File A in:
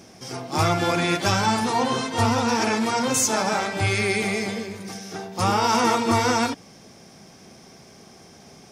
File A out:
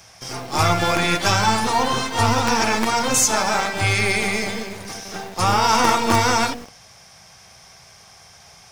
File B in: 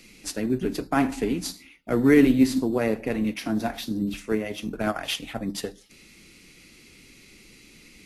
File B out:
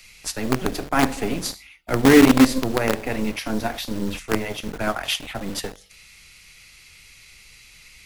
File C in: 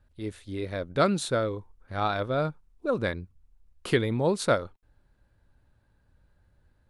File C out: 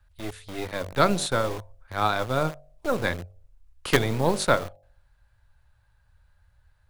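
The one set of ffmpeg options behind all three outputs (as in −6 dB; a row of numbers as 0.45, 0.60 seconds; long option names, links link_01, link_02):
-filter_complex "[0:a]bandreject=frequency=48:width_type=h:width=4,bandreject=frequency=96:width_type=h:width=4,bandreject=frequency=144:width_type=h:width=4,bandreject=frequency=192:width_type=h:width=4,bandreject=frequency=240:width_type=h:width=4,bandreject=frequency=288:width_type=h:width=4,bandreject=frequency=336:width_type=h:width=4,bandreject=frequency=384:width_type=h:width=4,bandreject=frequency=432:width_type=h:width=4,bandreject=frequency=480:width_type=h:width=4,bandreject=frequency=528:width_type=h:width=4,bandreject=frequency=576:width_type=h:width=4,bandreject=frequency=624:width_type=h:width=4,bandreject=frequency=672:width_type=h:width=4,bandreject=frequency=720:width_type=h:width=4,bandreject=frequency=768:width_type=h:width=4,bandreject=frequency=816:width_type=h:width=4,acrossover=split=130|620|4200[link_01][link_02][link_03][link_04];[link_02]acrusher=bits=4:dc=4:mix=0:aa=0.000001[link_05];[link_01][link_05][link_03][link_04]amix=inputs=4:normalize=0,volume=4.5dB"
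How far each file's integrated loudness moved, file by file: +3.0, +3.5, +2.5 LU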